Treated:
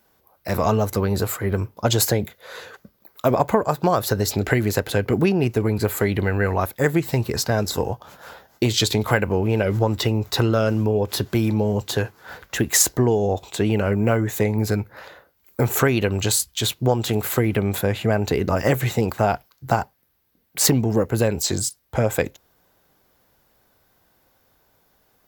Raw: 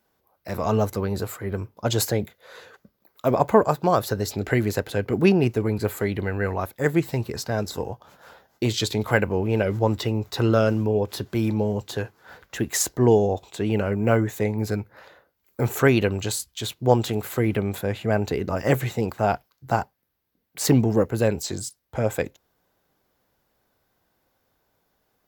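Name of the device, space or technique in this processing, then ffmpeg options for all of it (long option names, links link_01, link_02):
ASMR close-microphone chain: -af "lowshelf=frequency=180:gain=5,acompressor=threshold=-20dB:ratio=6,lowshelf=frequency=430:gain=-4,highshelf=frequency=9500:gain=3.5,volume=7.5dB"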